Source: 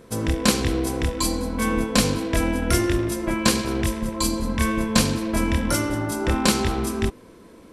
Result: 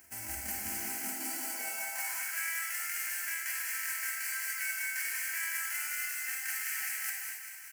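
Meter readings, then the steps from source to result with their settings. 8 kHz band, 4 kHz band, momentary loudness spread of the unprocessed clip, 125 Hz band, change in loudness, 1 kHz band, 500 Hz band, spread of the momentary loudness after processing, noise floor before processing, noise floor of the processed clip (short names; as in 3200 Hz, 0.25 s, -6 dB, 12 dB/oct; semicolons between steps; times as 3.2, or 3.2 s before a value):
-6.5 dB, -16.5 dB, 5 LU, under -30 dB, -11.0 dB, -17.5 dB, -30.5 dB, 2 LU, -47 dBFS, -45 dBFS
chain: spectral whitening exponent 0.1; reverse; compressor 10:1, threshold -28 dBFS, peak gain reduction 16.5 dB; reverse; fixed phaser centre 740 Hz, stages 8; on a send: feedback echo 0.195 s, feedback 59%, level -8 dB; on the sum: non-linear reverb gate 0.3 s flat, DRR -0.5 dB; high-pass sweep 66 Hz -> 1700 Hz, 0.41–2.44; gain -7.5 dB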